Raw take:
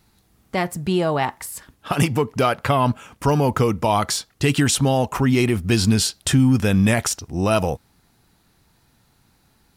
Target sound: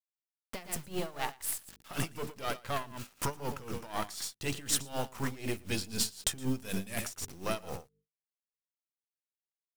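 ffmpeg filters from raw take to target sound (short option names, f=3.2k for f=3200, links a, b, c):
-filter_complex "[0:a]aeval=exprs='if(lt(val(0),0),0.251*val(0),val(0))':c=same,asettb=1/sr,asplit=3[a][b][c];[a]atrim=end=6.604[d];[b]atrim=start=6.6:end=7.04,asetpts=PTS-STARTPTS,afade=t=in:d=0.004:c=qsin,afade=t=out:st=0.436:d=0.004:c=qsin,highshelf=f=7.6k:g=10.5[e];[c]atrim=start=7.036[f];[d][e]acrossfade=d=0.004:c1=hsin:c2=qsin[g];[g][f]acrossfade=d=0.004:c1=qsin:c2=hsin,acrusher=bits=6:mix=0:aa=0.000001,acompressor=threshold=-33dB:ratio=2.5,highshelf=f=2.9k:g=7.5,bandreject=f=50:t=h:w=6,bandreject=f=100:t=h:w=6,bandreject=f=150:t=h:w=6,bandreject=f=200:t=h:w=6,bandreject=f=250:t=h:w=6,bandreject=f=300:t=h:w=6,bandreject=f=350:t=h:w=6,bandreject=f=400:t=h:w=6,bandreject=f=450:t=h:w=6,aecho=1:1:115:0.376,aeval=exprs='val(0)*pow(10,-18*(0.5-0.5*cos(2*PI*4*n/s))/20)':c=same"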